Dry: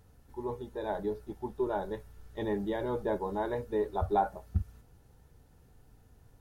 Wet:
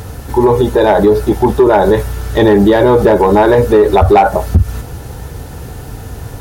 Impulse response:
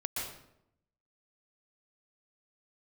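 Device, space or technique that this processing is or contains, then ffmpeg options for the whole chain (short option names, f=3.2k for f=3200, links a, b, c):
mastering chain: -af "highpass=47,equalizer=f=200:t=o:w=0.77:g=-3.5,acompressor=threshold=-33dB:ratio=2.5,asoftclip=type=tanh:threshold=-25.5dB,asoftclip=type=hard:threshold=-30dB,alimiter=level_in=36dB:limit=-1dB:release=50:level=0:latency=1,volume=-1dB"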